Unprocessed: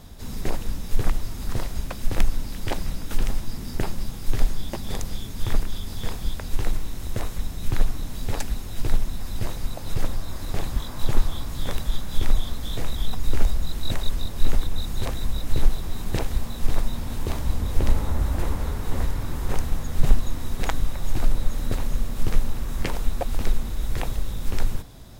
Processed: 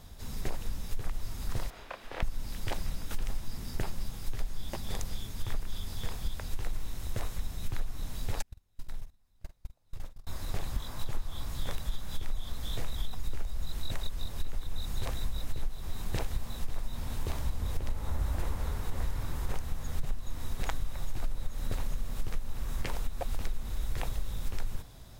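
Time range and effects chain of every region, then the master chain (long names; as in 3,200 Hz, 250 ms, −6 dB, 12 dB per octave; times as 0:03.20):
0:01.70–0:02.23: three-way crossover with the lows and the highs turned down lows −21 dB, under 340 Hz, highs −17 dB, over 3,600 Hz + double-tracking delay 29 ms −3 dB
0:08.42–0:10.27: noise gate −18 dBFS, range −35 dB + downward compressor 12 to 1, threshold −25 dBFS + double-tracking delay 48 ms −12 dB
whole clip: parametric band 270 Hz −5 dB 1.5 octaves; downward compressor 10 to 1, threshold −19 dBFS; level −5 dB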